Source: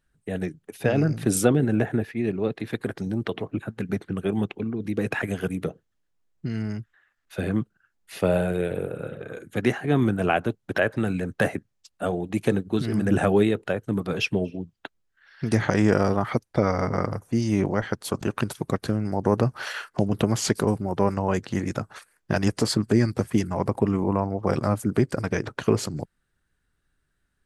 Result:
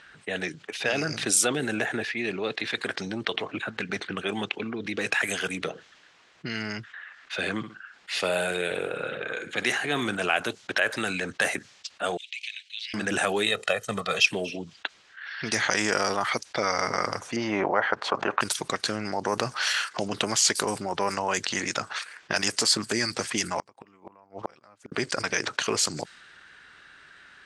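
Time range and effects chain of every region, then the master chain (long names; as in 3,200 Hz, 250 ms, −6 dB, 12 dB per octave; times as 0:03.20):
0:07.57–0:10.15: notch filter 6,100 Hz, Q 20 + flutter between parallel walls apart 10.7 metres, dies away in 0.22 s
0:12.17–0:12.94: Butterworth high-pass 2,300 Hz 48 dB per octave + high-shelf EQ 6,300 Hz −10.5 dB + downward compressor 2.5 to 1, threshold −50 dBFS
0:13.46–0:14.26: comb filter 1.6 ms, depth 79% + transient designer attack +4 dB, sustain −3 dB
0:17.36–0:18.41: low-pass filter 2,000 Hz + parametric band 790 Hz +11.5 dB 2.3 octaves
0:23.58–0:24.92: high-shelf EQ 5,500 Hz +10.5 dB + gate with flip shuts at −15 dBFS, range −39 dB + expander for the loud parts, over −59 dBFS
whole clip: meter weighting curve ITU-R 468; low-pass that shuts in the quiet parts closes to 2,400 Hz, open at −22.5 dBFS; envelope flattener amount 50%; level −8.5 dB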